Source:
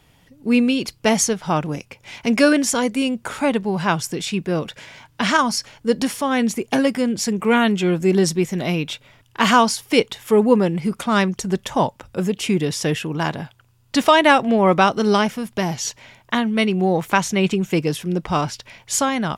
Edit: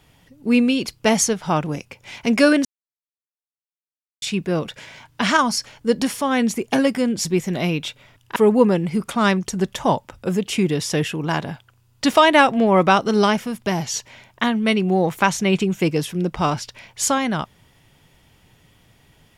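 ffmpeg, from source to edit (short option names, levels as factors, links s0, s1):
-filter_complex "[0:a]asplit=5[s0][s1][s2][s3][s4];[s0]atrim=end=2.65,asetpts=PTS-STARTPTS,afade=t=out:st=2.646:d=0.004:c=hsin[s5];[s1]atrim=start=2.65:end=4.22,asetpts=PTS-STARTPTS,volume=0[s6];[s2]atrim=start=4.22:end=7.252,asetpts=PTS-STARTPTS,afade=t=in:d=0.004:c=hsin[s7];[s3]atrim=start=8.298:end=9.412[s8];[s4]atrim=start=10.268[s9];[s5][s6][s7]concat=n=3:v=0:a=1[s10];[s10][s8]acrossfade=d=0.004:c1=hsin:c2=hsin[s11];[s11][s9]acrossfade=d=0.004:c1=hsin:c2=hsin"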